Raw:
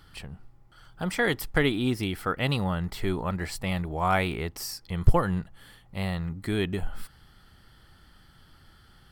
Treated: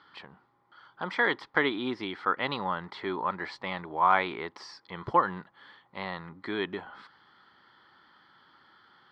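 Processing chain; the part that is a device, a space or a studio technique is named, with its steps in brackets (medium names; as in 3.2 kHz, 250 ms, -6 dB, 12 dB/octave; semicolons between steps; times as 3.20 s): phone earpiece (cabinet simulation 390–3800 Hz, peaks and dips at 470 Hz -4 dB, 670 Hz -6 dB, 1 kHz +7 dB, 2.7 kHz -10 dB); trim +2 dB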